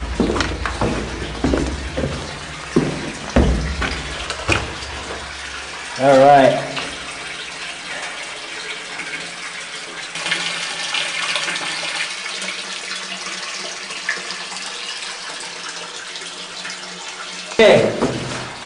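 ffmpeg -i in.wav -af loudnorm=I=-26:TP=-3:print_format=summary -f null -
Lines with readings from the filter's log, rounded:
Input Integrated:    -20.4 LUFS
Input True Peak:      -3.3 dBTP
Input LRA:             8.2 LU
Input Threshold:     -30.4 LUFS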